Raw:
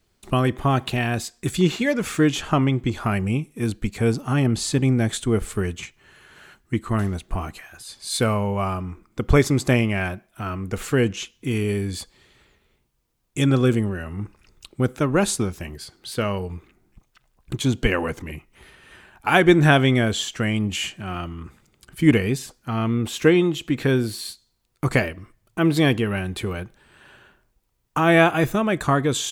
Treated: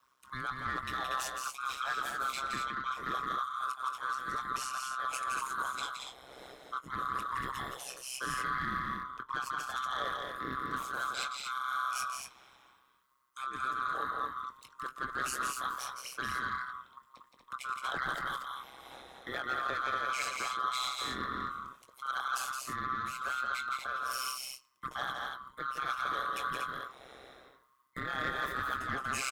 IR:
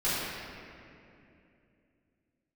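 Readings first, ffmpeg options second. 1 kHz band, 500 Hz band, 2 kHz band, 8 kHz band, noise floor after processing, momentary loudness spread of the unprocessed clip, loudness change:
-4.5 dB, -24.0 dB, -9.0 dB, -10.0 dB, -66 dBFS, 17 LU, -14.0 dB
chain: -filter_complex "[0:a]afftfilt=real='real(if(lt(b,960),b+48*(1-2*mod(floor(b/48),2)),b),0)':imag='imag(if(lt(b,960),b+48*(1-2*mod(floor(b/48),2)),b),0)':win_size=2048:overlap=0.75,equalizer=f=6400:w=1:g=-2.5,areverse,acompressor=threshold=0.0355:ratio=10,areverse,asplit=2[s0][s1];[s1]adelay=21,volume=0.299[s2];[s0][s2]amix=inputs=2:normalize=0,afreqshift=18,asoftclip=type=tanh:threshold=0.0596,tremolo=f=130:d=0.919,asplit=2[s3][s4];[s4]aecho=0:1:169.1|236.2:0.562|0.562[s5];[s3][s5]amix=inputs=2:normalize=0"

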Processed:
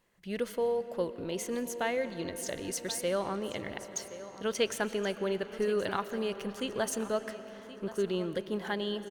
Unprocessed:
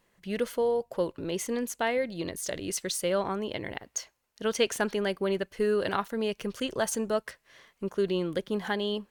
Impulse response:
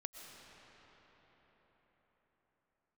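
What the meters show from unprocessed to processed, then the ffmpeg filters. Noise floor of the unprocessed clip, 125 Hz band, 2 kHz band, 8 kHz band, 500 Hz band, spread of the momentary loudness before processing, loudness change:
-73 dBFS, -3.5 dB, -3.0 dB, -3.5 dB, -3.0 dB, 8 LU, -3.0 dB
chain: -filter_complex "[0:a]aecho=1:1:1074|2148|3222:0.168|0.0588|0.0206,asplit=2[s0][s1];[1:a]atrim=start_sample=2205[s2];[s1][s2]afir=irnorm=-1:irlink=0,volume=0.841[s3];[s0][s3]amix=inputs=2:normalize=0,volume=0.447"

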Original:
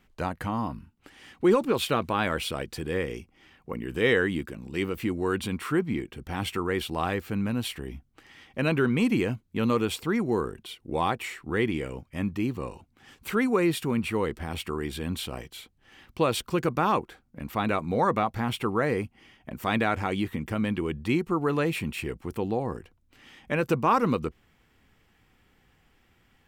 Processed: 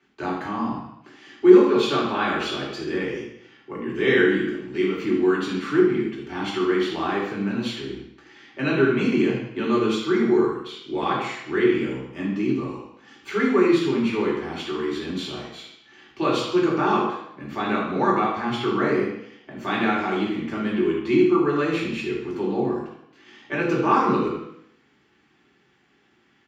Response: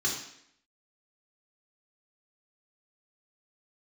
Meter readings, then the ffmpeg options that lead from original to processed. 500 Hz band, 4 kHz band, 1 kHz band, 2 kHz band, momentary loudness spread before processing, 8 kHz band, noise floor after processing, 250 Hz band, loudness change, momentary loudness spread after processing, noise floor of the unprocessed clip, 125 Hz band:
+6.5 dB, +3.5 dB, +3.5 dB, +4.0 dB, 12 LU, no reading, -62 dBFS, +6.0 dB, +5.5 dB, 14 LU, -66 dBFS, -1.0 dB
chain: -filter_complex "[0:a]acrossover=split=160 5900:gain=0.126 1 0.126[s0][s1][s2];[s0][s1][s2]amix=inputs=3:normalize=0,asplit=2[s3][s4];[s4]adelay=77,lowpass=f=4900:p=1,volume=0.335,asplit=2[s5][s6];[s6]adelay=77,lowpass=f=4900:p=1,volume=0.43,asplit=2[s7][s8];[s8]adelay=77,lowpass=f=4900:p=1,volume=0.43,asplit=2[s9][s10];[s10]adelay=77,lowpass=f=4900:p=1,volume=0.43,asplit=2[s11][s12];[s12]adelay=77,lowpass=f=4900:p=1,volume=0.43[s13];[s3][s5][s7][s9][s11][s13]amix=inputs=6:normalize=0[s14];[1:a]atrim=start_sample=2205[s15];[s14][s15]afir=irnorm=-1:irlink=0,volume=0.631"

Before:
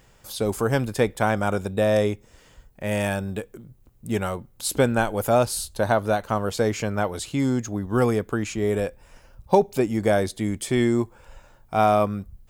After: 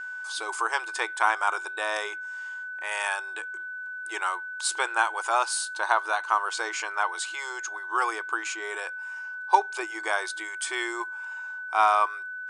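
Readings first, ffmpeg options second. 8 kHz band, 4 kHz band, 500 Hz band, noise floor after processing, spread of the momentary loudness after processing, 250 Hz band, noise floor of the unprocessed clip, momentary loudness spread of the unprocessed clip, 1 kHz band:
-0.5 dB, +0.5 dB, -14.0 dB, -37 dBFS, 11 LU, -21.0 dB, -56 dBFS, 8 LU, +1.5 dB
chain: -af "afftfilt=real='re*between(b*sr/4096,320,10000)':imag='im*between(b*sr/4096,320,10000)':win_size=4096:overlap=0.75,aeval=exprs='val(0)+0.0141*sin(2*PI*1500*n/s)':c=same,lowshelf=f=730:t=q:w=3:g=-10.5"

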